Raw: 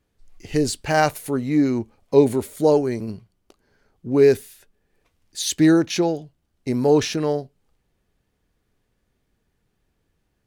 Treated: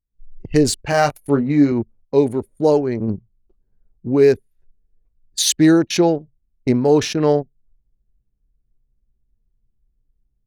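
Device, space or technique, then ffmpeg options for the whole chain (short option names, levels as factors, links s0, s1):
voice memo with heavy noise removal: -filter_complex "[0:a]asettb=1/sr,asplit=3[s0][s1][s2];[s0]atrim=end=0.904[s3];[s1]atrim=start=0.9:end=1.72,asetpts=PTS-STARTPTS,afade=t=in:d=0.004:c=qsin,afade=t=out:st=0.816:d=0.004:c=qsin,asplit=2[s4][s5];[s5]adelay=21,volume=0.501[s6];[s4][s6]amix=inputs=2:normalize=0,atrim=end_sample=36162[s7];[s2]atrim=start=1.716[s8];[s3][s7]acrossfade=d=0.004:c1=hsin:c2=qsin[s9];[s9][s8]acrossfade=d=0.004:c1=qsin:c2=hsin,anlmdn=39.8,dynaudnorm=f=110:g=3:m=5.96,volume=0.668"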